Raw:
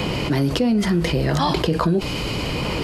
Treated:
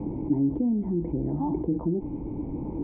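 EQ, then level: vocal tract filter u; low shelf 99 Hz +8.5 dB; 0.0 dB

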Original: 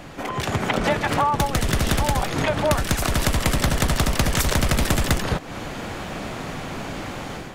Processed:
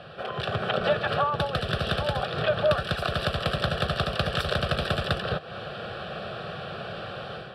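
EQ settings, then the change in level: BPF 120–4500 Hz; fixed phaser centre 1400 Hz, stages 8; 0.0 dB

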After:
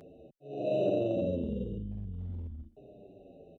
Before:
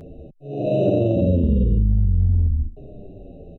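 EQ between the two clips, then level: HPF 490 Hz 6 dB/oct; -6.0 dB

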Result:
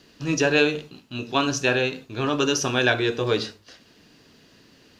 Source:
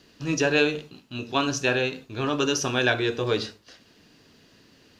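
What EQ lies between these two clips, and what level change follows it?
notches 50/100 Hz; +2.0 dB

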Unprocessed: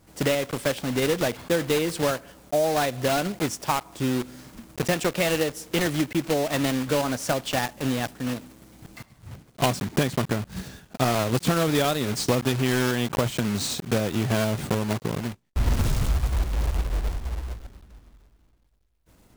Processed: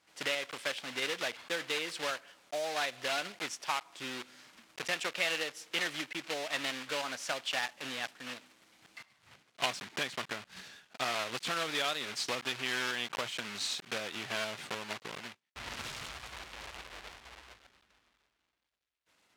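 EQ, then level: band-pass 2700 Hz, Q 0.79; -2.5 dB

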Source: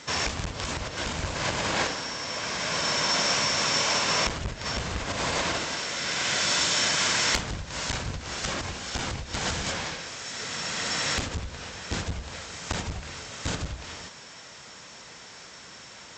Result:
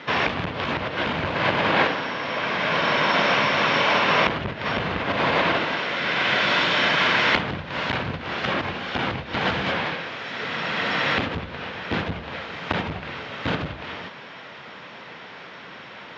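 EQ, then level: HPF 140 Hz 12 dB/oct; LPF 3400 Hz 24 dB/oct; air absorption 61 m; +8.5 dB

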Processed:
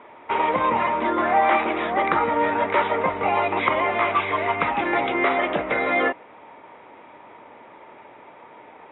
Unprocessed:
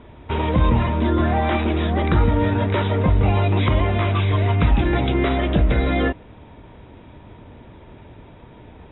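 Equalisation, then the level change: speaker cabinet 410–3100 Hz, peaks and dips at 550 Hz +3 dB, 850 Hz +7 dB, 1200 Hz +7 dB, 2100 Hz +7 dB; 0.0 dB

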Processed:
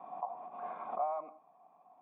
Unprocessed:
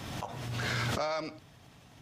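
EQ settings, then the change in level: vocal tract filter a; brick-wall FIR high-pass 160 Hz; +8.0 dB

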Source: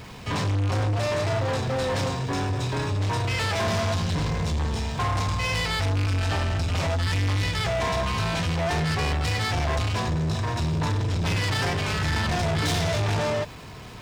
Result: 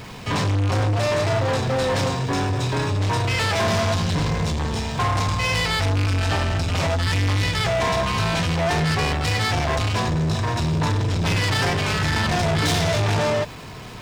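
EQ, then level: bell 68 Hz -6 dB 0.56 oct; +4.5 dB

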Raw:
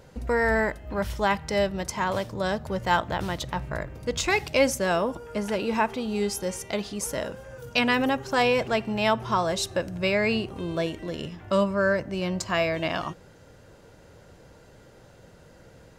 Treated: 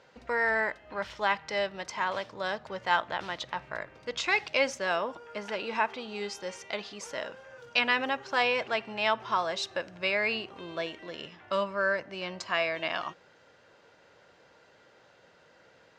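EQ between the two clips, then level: HPF 1400 Hz 6 dB/oct; air absorption 160 m; +2.5 dB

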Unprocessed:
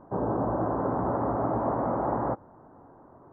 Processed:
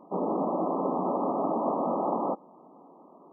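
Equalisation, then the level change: brick-wall FIR band-pass 160–1300 Hz; 0.0 dB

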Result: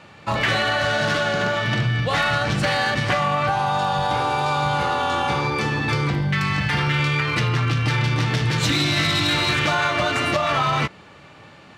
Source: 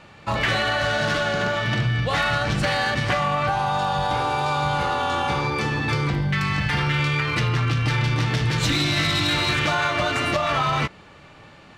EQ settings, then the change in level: HPF 78 Hz; +1.5 dB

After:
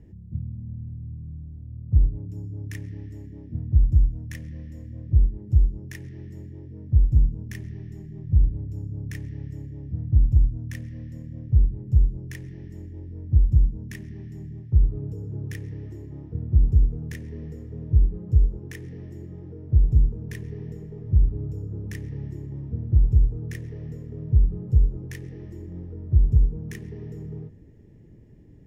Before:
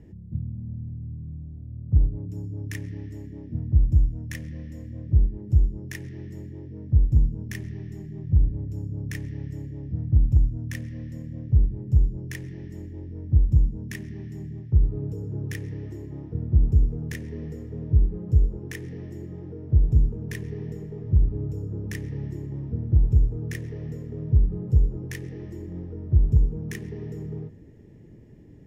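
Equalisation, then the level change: low shelf 100 Hz +7 dB; -4.0 dB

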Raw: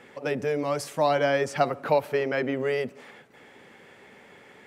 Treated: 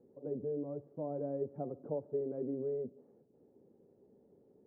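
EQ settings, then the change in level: ladder low-pass 520 Hz, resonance 30%; -4.5 dB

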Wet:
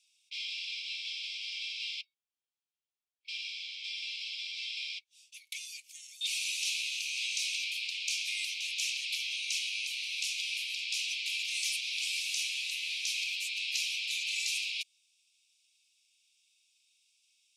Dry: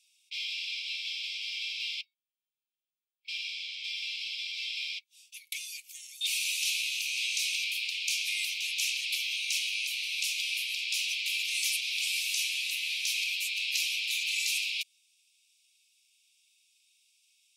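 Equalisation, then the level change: LPF 7400 Hz 12 dB/oct; high shelf 5500 Hz +7 dB; -4.5 dB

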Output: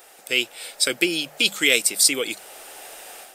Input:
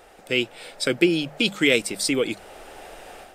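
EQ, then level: RIAA curve recording; -1.0 dB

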